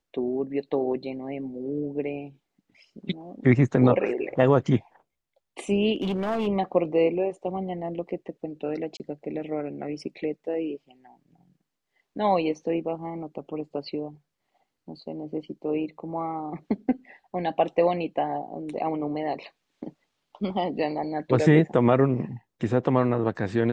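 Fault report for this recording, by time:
5.94–6.48 s: clipped -23 dBFS
8.97–9.00 s: dropout 28 ms

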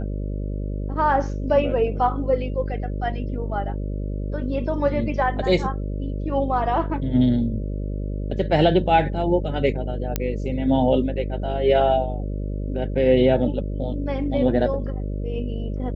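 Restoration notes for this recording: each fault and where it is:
buzz 50 Hz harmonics 12 -27 dBFS
10.16 s: pop -7 dBFS

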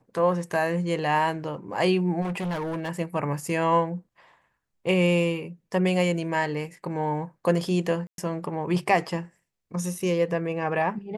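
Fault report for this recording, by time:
2.21–2.89 s: clipped -26.5 dBFS
8.07–8.18 s: dropout 112 ms

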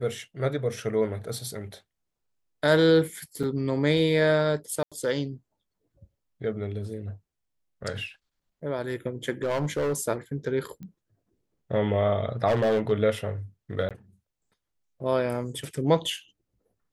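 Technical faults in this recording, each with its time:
3.43–3.44 s: dropout 5.8 ms
4.83–4.92 s: dropout 86 ms
9.43–10.01 s: clipped -22.5 dBFS
10.83 s: pop -30 dBFS
12.47–12.92 s: clipped -19 dBFS
13.89–13.91 s: dropout 17 ms

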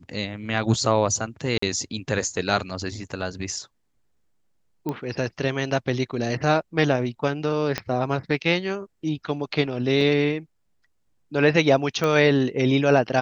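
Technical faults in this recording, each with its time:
1.58–1.62 s: dropout 44 ms
4.89 s: pop -16 dBFS
7.78 s: pop -10 dBFS
10.01 s: dropout 2.3 ms
12.04 s: pop -11 dBFS

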